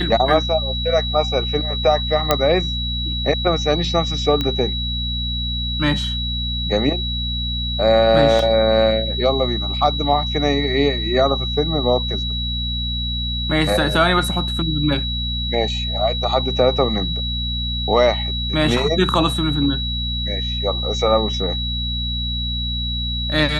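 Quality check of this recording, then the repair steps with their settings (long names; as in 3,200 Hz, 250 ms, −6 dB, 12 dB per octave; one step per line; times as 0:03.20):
mains hum 60 Hz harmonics 4 −25 dBFS
whistle 3,900 Hz −24 dBFS
0:02.31: click 0 dBFS
0:04.41: click −9 dBFS
0:08.39: drop-out 2.5 ms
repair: click removal
hum removal 60 Hz, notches 4
notch filter 3,900 Hz, Q 30
repair the gap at 0:08.39, 2.5 ms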